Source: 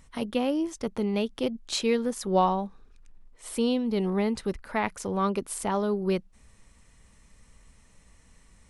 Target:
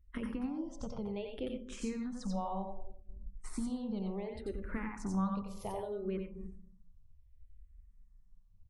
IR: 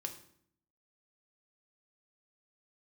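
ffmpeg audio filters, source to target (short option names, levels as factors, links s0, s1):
-filter_complex "[0:a]alimiter=limit=0.126:level=0:latency=1:release=231,asplit=2[s0][s1];[s1]adelay=278,lowpass=f=1100:p=1,volume=0.0708,asplit=2[s2][s3];[s3]adelay=278,lowpass=f=1100:p=1,volume=0.37[s4];[s0][s2][s4]amix=inputs=3:normalize=0,agate=range=0.158:threshold=0.00447:ratio=16:detection=peak,acompressor=threshold=0.00708:ratio=3,asplit=2[s5][s6];[s6]equalizer=f=340:t=o:w=0.24:g=-15[s7];[1:a]atrim=start_sample=2205,highshelf=f=8400:g=11,adelay=89[s8];[s7][s8]afir=irnorm=-1:irlink=0,volume=0.841[s9];[s5][s9]amix=inputs=2:normalize=0,afftdn=nr=16:nf=-61,aemphasis=mode=reproduction:type=bsi,bandreject=f=60:t=h:w=6,bandreject=f=120:t=h:w=6,bandreject=f=180:t=h:w=6,bandreject=f=240:t=h:w=6,bandreject=f=300:t=h:w=6,bandreject=f=360:t=h:w=6,bandreject=f=420:t=h:w=6,bandreject=f=480:t=h:w=6,bandreject=f=540:t=h:w=6,bandreject=f=600:t=h:w=6,asplit=2[s10][s11];[s11]afreqshift=-0.66[s12];[s10][s12]amix=inputs=2:normalize=1,volume=1.33"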